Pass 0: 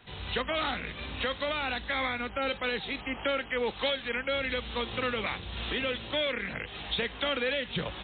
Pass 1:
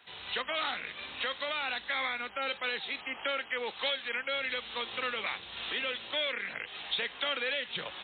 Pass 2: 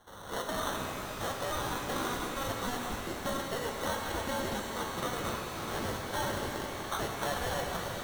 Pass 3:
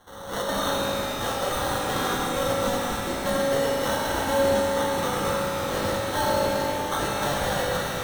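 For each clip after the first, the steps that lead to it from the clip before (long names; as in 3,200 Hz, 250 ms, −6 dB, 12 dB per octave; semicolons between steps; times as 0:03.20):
high-pass filter 970 Hz 6 dB per octave
decimation without filtering 18×; reverb with rising layers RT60 3.4 s, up +12 semitones, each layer −8 dB, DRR 1 dB; level −2.5 dB
convolution reverb RT60 3.0 s, pre-delay 3 ms, DRR −1 dB; level +5 dB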